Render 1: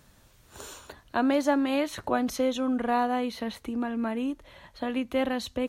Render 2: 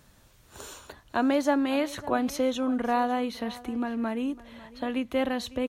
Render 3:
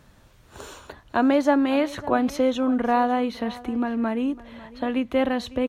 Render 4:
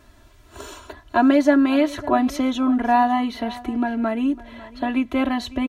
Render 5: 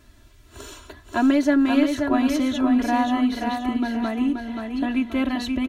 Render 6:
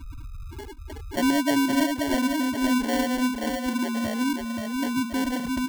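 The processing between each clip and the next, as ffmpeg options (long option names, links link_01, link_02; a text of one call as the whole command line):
ffmpeg -i in.wav -af "aecho=1:1:552:0.112" out.wav
ffmpeg -i in.wav -af "highshelf=frequency=4600:gain=-10,volume=5dB" out.wav
ffmpeg -i in.wav -af "aecho=1:1:3:1" out.wav
ffmpeg -i in.wav -filter_complex "[0:a]equalizer=frequency=810:width=0.74:gain=-7,asplit=2[link_01][link_02];[link_02]aeval=exprs='clip(val(0),-1,0.1)':channel_layout=same,volume=-11dB[link_03];[link_01][link_03]amix=inputs=2:normalize=0,aecho=1:1:529|1058|1587|2116|2645:0.562|0.208|0.077|0.0285|0.0105,volume=-2dB" out.wav
ffmpeg -i in.wav -af "aeval=exprs='val(0)+0.5*0.0708*sgn(val(0))':channel_layout=same,afftfilt=real='re*gte(hypot(re,im),0.158)':imag='im*gte(hypot(re,im),0.158)':win_size=1024:overlap=0.75,acrusher=samples=35:mix=1:aa=0.000001,volume=-5.5dB" out.wav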